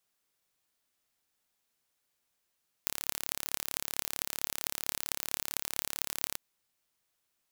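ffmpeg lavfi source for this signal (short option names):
-f lavfi -i "aevalsrc='0.841*eq(mod(n,1239),0)*(0.5+0.5*eq(mod(n,9912),0))':d=3.51:s=44100"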